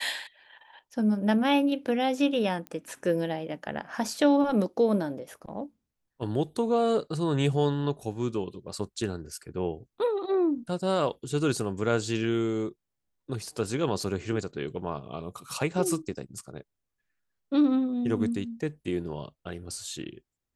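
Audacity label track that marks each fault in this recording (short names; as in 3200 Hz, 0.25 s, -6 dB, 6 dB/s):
2.670000	2.670000	pop -24 dBFS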